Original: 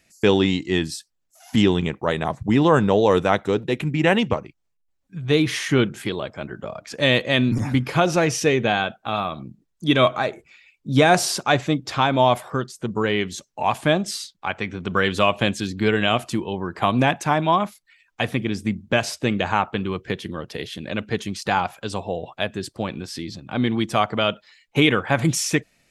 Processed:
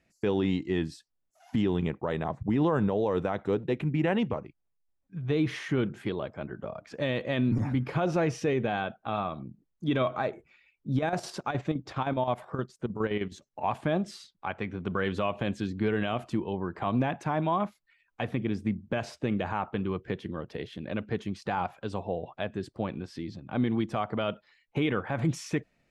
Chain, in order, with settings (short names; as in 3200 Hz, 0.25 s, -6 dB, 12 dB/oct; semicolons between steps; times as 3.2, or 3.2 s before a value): LPF 1300 Hz 6 dB/oct; limiter -13 dBFS, peak gain reduction 8 dB; 10.92–13.67 chopper 9.6 Hz, depth 60%, duty 65%; gain -4.5 dB